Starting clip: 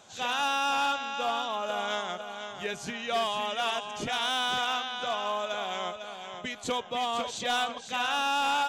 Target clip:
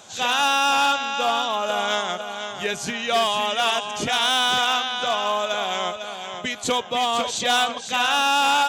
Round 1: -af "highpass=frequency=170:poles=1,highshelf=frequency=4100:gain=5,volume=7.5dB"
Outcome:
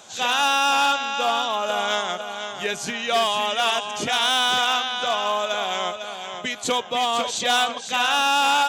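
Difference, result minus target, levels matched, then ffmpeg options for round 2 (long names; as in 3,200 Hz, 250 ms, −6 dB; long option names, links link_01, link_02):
125 Hz band −3.0 dB
-af "highpass=frequency=45:poles=1,highshelf=frequency=4100:gain=5,volume=7.5dB"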